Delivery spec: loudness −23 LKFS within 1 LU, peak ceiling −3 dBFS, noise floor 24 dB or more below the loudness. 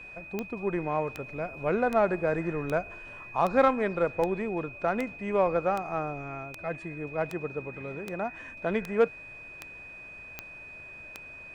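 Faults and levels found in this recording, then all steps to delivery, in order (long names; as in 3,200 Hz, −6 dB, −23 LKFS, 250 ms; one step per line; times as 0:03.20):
number of clicks 15; interfering tone 2,500 Hz; level of the tone −43 dBFS; integrated loudness −29.5 LKFS; sample peak −10.5 dBFS; target loudness −23.0 LKFS
→ click removal
notch filter 2,500 Hz, Q 30
level +6.5 dB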